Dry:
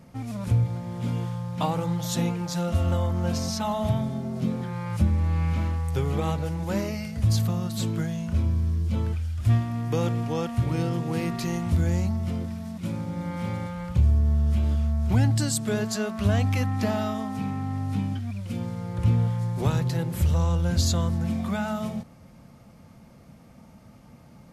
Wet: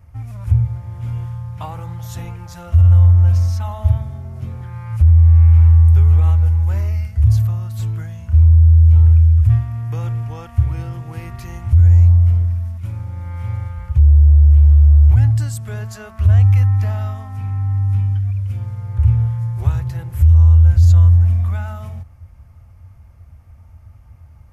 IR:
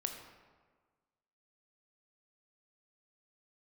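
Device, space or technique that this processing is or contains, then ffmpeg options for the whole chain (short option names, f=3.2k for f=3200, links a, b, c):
car stereo with a boomy subwoofer: -af "equalizer=f=250:t=o:w=1:g=-7,equalizer=f=500:t=o:w=1:g=-7,equalizer=f=4k:t=o:w=1:g=-9,equalizer=f=8k:t=o:w=1:g=-5,lowshelf=f=120:t=q:w=3:g=12,alimiter=limit=-4.5dB:level=0:latency=1:release=22"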